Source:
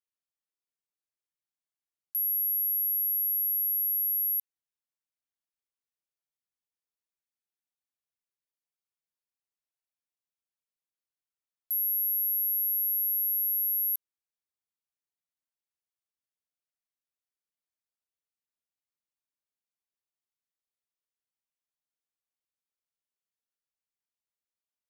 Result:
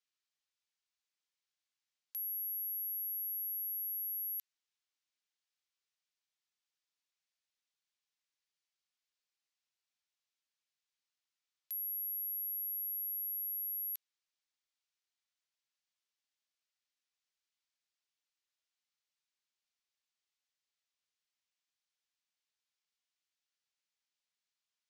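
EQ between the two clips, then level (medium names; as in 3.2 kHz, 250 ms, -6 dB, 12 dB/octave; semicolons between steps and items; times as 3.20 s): low-pass 11 kHz; distance through air 160 m; tilt EQ +6 dB/octave; 0.0 dB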